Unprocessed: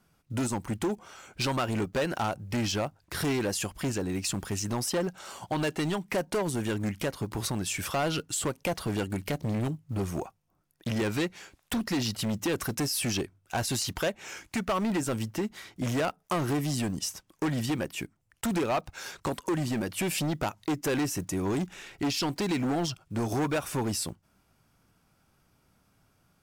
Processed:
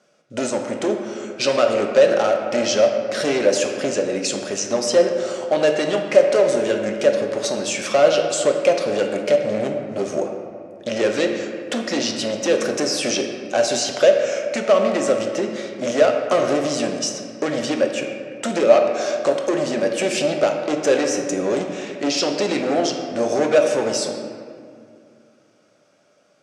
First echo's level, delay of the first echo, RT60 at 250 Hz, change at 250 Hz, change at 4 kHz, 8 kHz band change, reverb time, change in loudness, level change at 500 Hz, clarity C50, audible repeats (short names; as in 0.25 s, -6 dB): none, none, 2.9 s, +5.5 dB, +9.0 dB, +7.5 dB, 2.2 s, +11.0 dB, +16.5 dB, 4.5 dB, none